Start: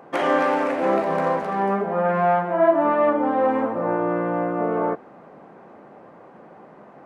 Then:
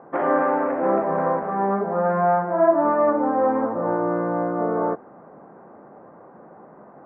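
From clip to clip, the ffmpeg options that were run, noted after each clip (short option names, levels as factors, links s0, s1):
-af "lowpass=f=1600:w=0.5412,lowpass=f=1600:w=1.3066"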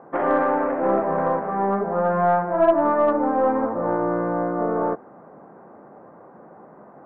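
-af "aeval=exprs='0.422*(cos(1*acos(clip(val(0)/0.422,-1,1)))-cos(1*PI/2))+0.015*(cos(4*acos(clip(val(0)/0.422,-1,1)))-cos(4*PI/2))':c=same"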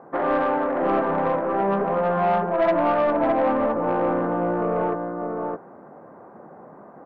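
-af "aecho=1:1:612:0.562,asoftclip=type=tanh:threshold=0.2"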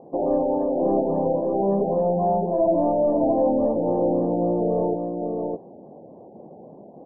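-af "asuperstop=centerf=1400:order=4:qfactor=0.65,afftfilt=real='re*lt(b*sr/1024,890*pow(1800/890,0.5+0.5*sin(2*PI*3.6*pts/sr)))':imag='im*lt(b*sr/1024,890*pow(1800/890,0.5+0.5*sin(2*PI*3.6*pts/sr)))':win_size=1024:overlap=0.75,volume=1.33"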